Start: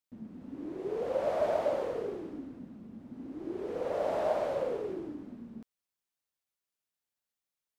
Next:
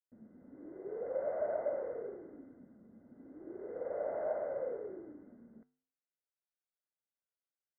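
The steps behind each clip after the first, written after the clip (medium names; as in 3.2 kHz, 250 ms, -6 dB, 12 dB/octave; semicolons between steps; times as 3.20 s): flange 0.45 Hz, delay 7.7 ms, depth 2.6 ms, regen -87%; rippled Chebyshev low-pass 2.1 kHz, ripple 9 dB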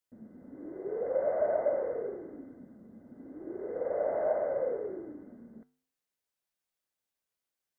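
band-stop 1.4 kHz, Q 21; trim +6.5 dB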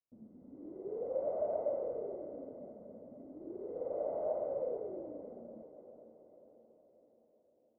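boxcar filter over 26 samples; echo that smears into a reverb 499 ms, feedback 54%, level -12 dB; trim -4.5 dB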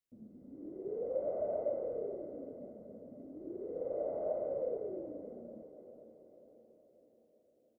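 peaking EQ 930 Hz -9 dB 0.81 oct; doubling 29 ms -13 dB; trim +2 dB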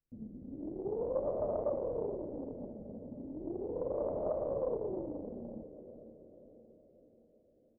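tilt EQ -4.5 dB/octave; loudspeaker Doppler distortion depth 0.31 ms; trim -2.5 dB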